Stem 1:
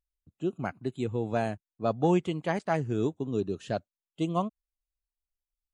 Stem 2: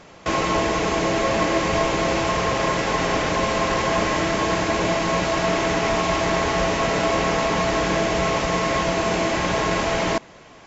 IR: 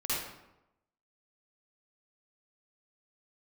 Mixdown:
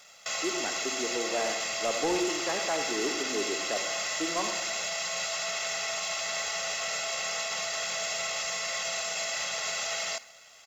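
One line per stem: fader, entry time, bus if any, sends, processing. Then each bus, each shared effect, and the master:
-6.0 dB, 0.00 s, send -10.5 dB, high-pass 290 Hz 24 dB/octave
+1.0 dB, 0.00 s, send -23 dB, differentiator; comb 1.5 ms, depth 80%; peak limiter -28 dBFS, peak gain reduction 8 dB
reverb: on, RT60 0.90 s, pre-delay 46 ms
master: waveshaping leveller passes 1; saturation -19 dBFS, distortion -26 dB

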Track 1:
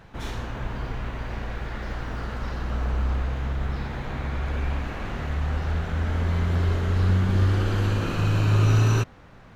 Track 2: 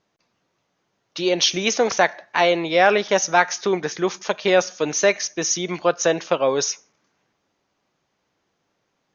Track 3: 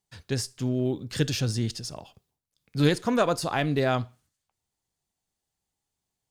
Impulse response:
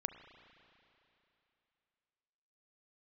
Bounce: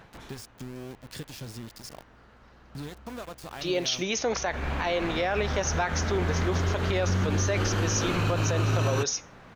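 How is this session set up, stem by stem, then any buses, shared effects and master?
+2.0 dB, 0.00 s, no send, bass shelf 120 Hz -9.5 dB; auto duck -22 dB, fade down 0.40 s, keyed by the third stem
-5.5 dB, 2.45 s, no send, none
-3.0 dB, 0.00 s, no send, compression 6:1, threshold -34 dBFS, peak gain reduction 17 dB; small samples zeroed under -37.5 dBFS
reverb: none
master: peak limiter -17 dBFS, peak gain reduction 9.5 dB

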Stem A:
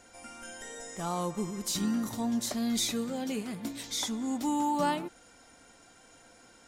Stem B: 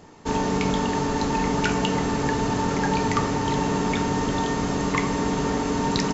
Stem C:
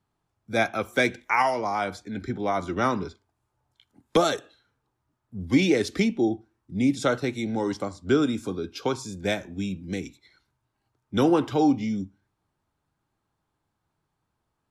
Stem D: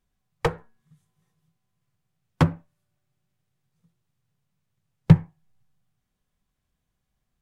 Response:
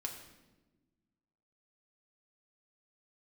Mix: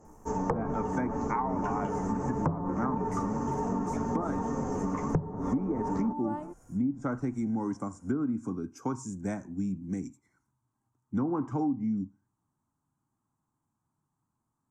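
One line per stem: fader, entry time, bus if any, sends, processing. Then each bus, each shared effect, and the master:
-5.0 dB, 1.45 s, no send, none
-3.5 dB, 0.00 s, no send, three-phase chorus
-11.0 dB, 0.00 s, no send, ten-band graphic EQ 125 Hz +8 dB, 250 Hz +12 dB, 500 Hz -6 dB, 1 kHz +8 dB, 2 kHz +7 dB, 8 kHz +11 dB
-3.0 dB, 0.05 s, no send, power-law waveshaper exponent 0.7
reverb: none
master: low-pass that closes with the level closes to 1.1 kHz, closed at -18.5 dBFS; FFT filter 1.1 kHz 0 dB, 4 kHz -28 dB, 6 kHz 0 dB; compression 6:1, threshold -26 dBFS, peak gain reduction 16 dB

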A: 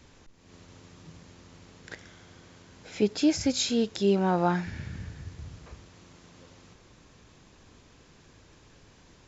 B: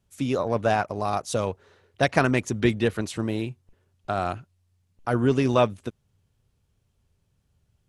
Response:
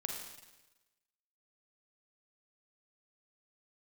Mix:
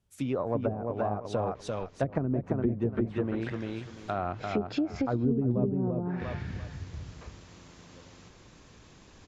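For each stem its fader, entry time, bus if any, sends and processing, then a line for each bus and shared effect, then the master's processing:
+1.5 dB, 1.55 s, no send, echo send -18 dB, compression 6:1, threshold -27 dBFS, peak gain reduction 9 dB
-5.0 dB, 0.00 s, no send, echo send -3.5 dB, none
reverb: none
echo: feedback delay 344 ms, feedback 24%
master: low-pass that closes with the level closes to 320 Hz, closed at -21.5 dBFS

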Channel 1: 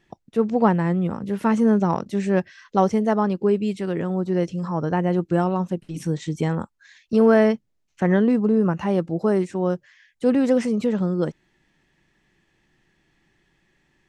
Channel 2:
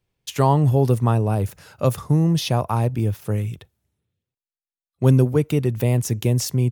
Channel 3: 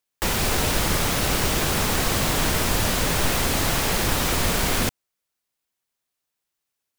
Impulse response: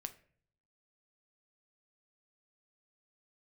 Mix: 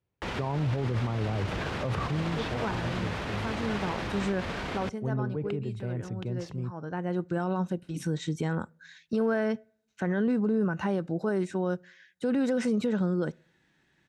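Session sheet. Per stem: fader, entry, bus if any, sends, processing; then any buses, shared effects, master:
-4.5 dB, 2.00 s, no bus, send -13.5 dB, small resonant body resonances 1.5/3.8 kHz, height 12 dB, ringing for 30 ms; auto duck -18 dB, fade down 0.40 s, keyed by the second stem
1.98 s -5.5 dB -> 2.38 s -15 dB, 0.00 s, bus A, no send, treble shelf 2.1 kHz -10.5 dB; decay stretcher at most 60 dB/s
-6.0 dB, 0.00 s, bus A, no send, peak limiter -15.5 dBFS, peak gain reduction 6.5 dB
bus A: 0.0 dB, low-pass 2.9 kHz 12 dB/octave; peak limiter -21 dBFS, peak gain reduction 11 dB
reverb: on, pre-delay 6 ms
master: high-pass 57 Hz; peak limiter -20 dBFS, peak gain reduction 10 dB

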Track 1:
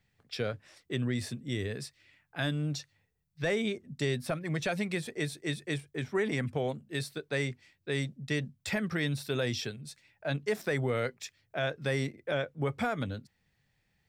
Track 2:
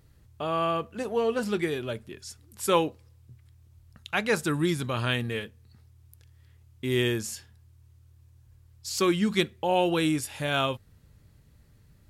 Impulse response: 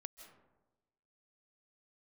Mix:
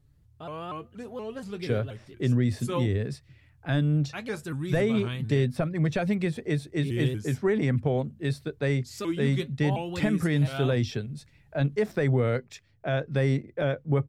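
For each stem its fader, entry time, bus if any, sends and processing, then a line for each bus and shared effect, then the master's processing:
+2.0 dB, 1.30 s, no send, tilt EQ -2.5 dB/octave
-7.0 dB, 0.00 s, no send, bass shelf 240 Hz +10.5 dB; flange 0.61 Hz, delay 6.5 ms, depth 2.3 ms, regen +50%; vibrato with a chosen wave saw up 4.2 Hz, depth 160 cents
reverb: none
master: none

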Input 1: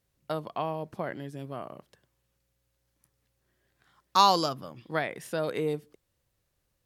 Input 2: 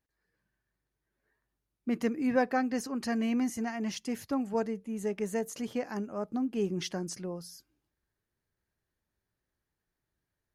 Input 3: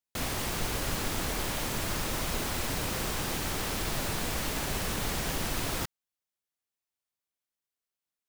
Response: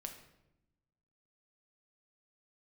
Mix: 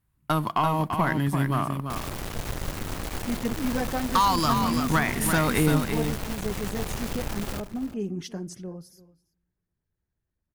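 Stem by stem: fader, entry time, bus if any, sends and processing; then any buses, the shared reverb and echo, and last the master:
+2.0 dB, 0.00 s, send -12 dB, echo send -5.5 dB, FFT filter 310 Hz 0 dB, 520 Hz -12 dB, 970 Hz +6 dB, 5.9 kHz -1 dB, 10 kHz +10 dB; compression 4:1, threshold -30 dBFS, peak gain reduction 16 dB; waveshaping leveller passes 2
-3.0 dB, 1.40 s, send -12.5 dB, echo send -18 dB, treble shelf 10 kHz +5.5 dB; LFO notch sine 8.7 Hz 470–5200 Hz
+2.5 dB, 1.75 s, no send, echo send -12 dB, treble shelf 2.2 kHz -10.5 dB; peak limiter -31.5 dBFS, peak gain reduction 11 dB; bit crusher 6-bit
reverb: on, RT60 0.90 s, pre-delay 6 ms
echo: delay 339 ms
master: bass shelf 170 Hz +9 dB; tape noise reduction on one side only decoder only

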